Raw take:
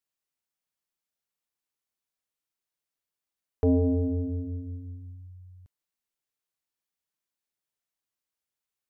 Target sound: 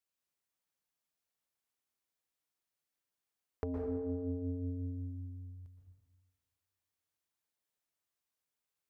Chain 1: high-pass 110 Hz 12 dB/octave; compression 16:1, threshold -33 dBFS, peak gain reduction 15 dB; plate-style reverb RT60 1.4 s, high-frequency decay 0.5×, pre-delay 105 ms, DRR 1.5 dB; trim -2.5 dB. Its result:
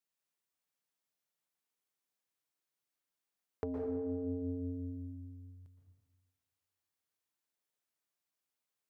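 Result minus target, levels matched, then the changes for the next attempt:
125 Hz band -4.0 dB
change: high-pass 33 Hz 12 dB/octave

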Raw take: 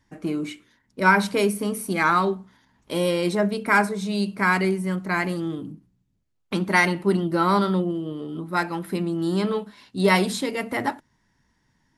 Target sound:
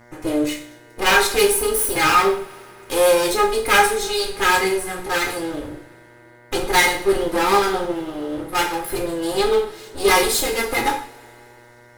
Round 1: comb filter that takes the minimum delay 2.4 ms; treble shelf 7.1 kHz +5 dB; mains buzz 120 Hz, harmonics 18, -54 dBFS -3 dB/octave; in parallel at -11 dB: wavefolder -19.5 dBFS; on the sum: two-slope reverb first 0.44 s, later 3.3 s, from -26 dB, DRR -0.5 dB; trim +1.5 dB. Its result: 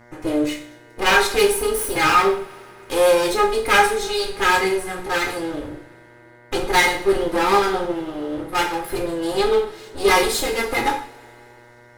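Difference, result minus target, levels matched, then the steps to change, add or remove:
8 kHz band -3.5 dB
change: treble shelf 7.1 kHz +12.5 dB

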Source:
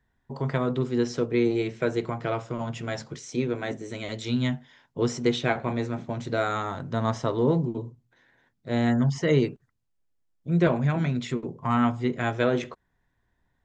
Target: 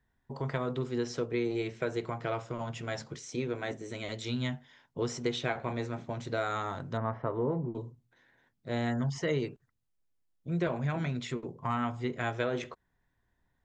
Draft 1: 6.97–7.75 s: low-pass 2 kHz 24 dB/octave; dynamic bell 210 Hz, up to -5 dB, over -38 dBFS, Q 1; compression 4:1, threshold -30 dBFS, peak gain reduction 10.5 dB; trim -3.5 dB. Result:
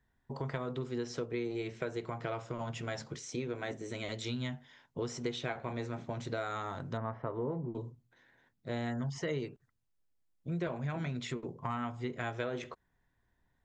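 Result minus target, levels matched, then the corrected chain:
compression: peak gain reduction +5 dB
6.97–7.75 s: low-pass 2 kHz 24 dB/octave; dynamic bell 210 Hz, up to -5 dB, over -38 dBFS, Q 1; compression 4:1, threshold -23 dBFS, peak gain reduction 5 dB; trim -3.5 dB

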